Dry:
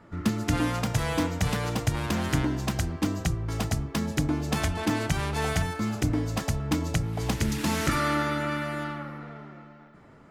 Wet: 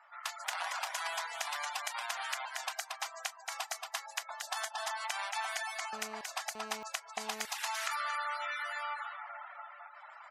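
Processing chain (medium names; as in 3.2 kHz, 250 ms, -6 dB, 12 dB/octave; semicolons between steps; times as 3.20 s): 0.44–1.01 s: cycle switcher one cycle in 3, inverted; recorder AGC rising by 7.1 dB/s; delay 228 ms -5 dB; 4.30–5.05 s: dynamic bell 2.4 kHz, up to -8 dB, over -52 dBFS, Q 3.6; reverberation RT60 0.40 s, pre-delay 5 ms, DRR 16.5 dB; reverb removal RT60 0.6 s; steep high-pass 710 Hz 48 dB/octave; spectral gate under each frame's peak -25 dB strong; compression, threshold -31 dBFS, peak gain reduction 6.5 dB; 5.93–7.45 s: mobile phone buzz -45 dBFS; trim -1.5 dB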